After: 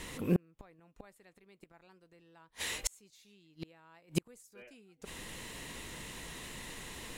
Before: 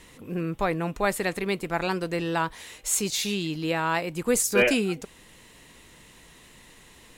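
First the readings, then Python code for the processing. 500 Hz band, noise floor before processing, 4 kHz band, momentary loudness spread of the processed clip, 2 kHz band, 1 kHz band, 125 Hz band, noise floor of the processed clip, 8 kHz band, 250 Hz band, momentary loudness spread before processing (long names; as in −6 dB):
−18.0 dB, −53 dBFS, −11.5 dB, 24 LU, −16.5 dB, −22.5 dB, −7.5 dB, −72 dBFS, −14.5 dB, −11.5 dB, 10 LU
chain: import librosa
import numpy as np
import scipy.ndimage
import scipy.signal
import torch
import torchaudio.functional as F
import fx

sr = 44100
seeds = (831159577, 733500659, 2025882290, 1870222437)

y = fx.gate_flip(x, sr, shuts_db=-22.0, range_db=-40)
y = y * 10.0 ** (6.0 / 20.0)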